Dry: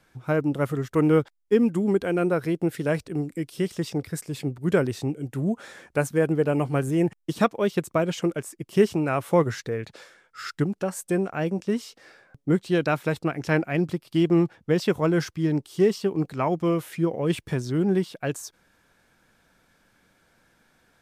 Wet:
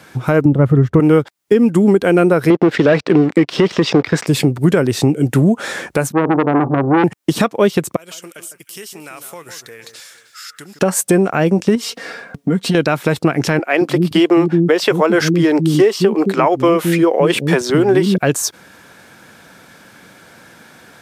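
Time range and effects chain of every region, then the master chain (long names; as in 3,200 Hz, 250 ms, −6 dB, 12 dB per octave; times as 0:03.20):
0:00.45–0:01.00: low-pass filter 1,100 Hz 6 dB per octave + parametric band 73 Hz +15 dB 2.2 octaves
0:02.50–0:04.27: high-pass filter 400 Hz 6 dB per octave + leveller curve on the samples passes 3 + high-frequency loss of the air 190 metres
0:06.12–0:07.04: Chebyshev low-pass with heavy ripple 1,200 Hz, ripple 9 dB + double-tracking delay 36 ms −14 dB + saturating transformer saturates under 1,100 Hz
0:07.96–0:10.79: first-order pre-emphasis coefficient 0.97 + downward compressor 3 to 1, threshold −54 dBFS + delay that swaps between a low-pass and a high-pass 155 ms, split 1,800 Hz, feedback 50%, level −9 dB
0:11.75–0:12.75: bass and treble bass +3 dB, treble −2 dB + downward compressor, threshold −33 dBFS + comb filter 4.3 ms, depth 62%
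0:13.59–0:18.18: bass and treble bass −10 dB, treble −4 dB + multiband delay without the direct sound highs, lows 220 ms, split 280 Hz
whole clip: high-pass filter 110 Hz; downward compressor, threshold −29 dBFS; boost into a limiter +21.5 dB; level −1 dB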